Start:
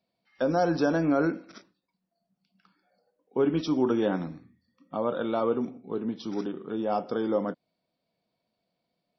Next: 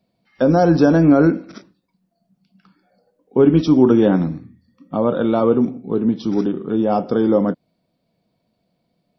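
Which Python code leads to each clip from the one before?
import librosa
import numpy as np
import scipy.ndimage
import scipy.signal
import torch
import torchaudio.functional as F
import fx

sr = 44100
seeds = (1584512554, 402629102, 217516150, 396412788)

y = fx.low_shelf(x, sr, hz=360.0, db=11.5)
y = y * librosa.db_to_amplitude(6.0)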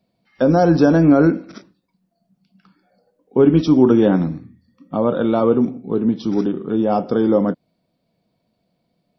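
y = x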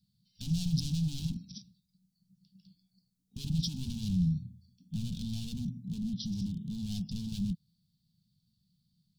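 y = np.clip(10.0 ** (21.0 / 20.0) * x, -1.0, 1.0) / 10.0 ** (21.0 / 20.0)
y = scipy.signal.sosfilt(scipy.signal.cheby2(4, 40, [320.0, 2100.0], 'bandstop', fs=sr, output='sos'), y)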